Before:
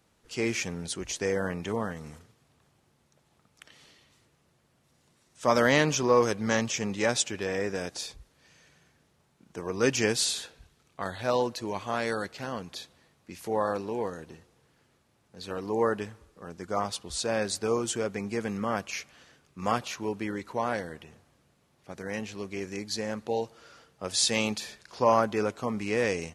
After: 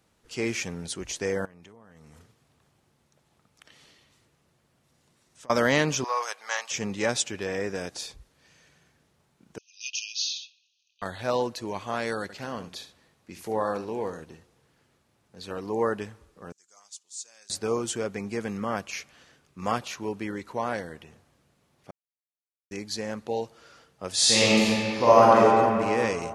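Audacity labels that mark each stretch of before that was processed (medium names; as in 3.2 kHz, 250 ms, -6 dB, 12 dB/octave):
1.450000	5.500000	compression 20:1, threshold -46 dBFS
6.040000	6.710000	high-pass 730 Hz 24 dB/octave
9.580000	11.020000	brick-wall FIR band-pass 2.4–6.7 kHz
12.220000	14.240000	delay 73 ms -12 dB
16.520000	17.500000	band-pass filter 7 kHz, Q 3.8
21.910000	22.710000	mute
24.130000	25.400000	reverb throw, RT60 2.6 s, DRR -8 dB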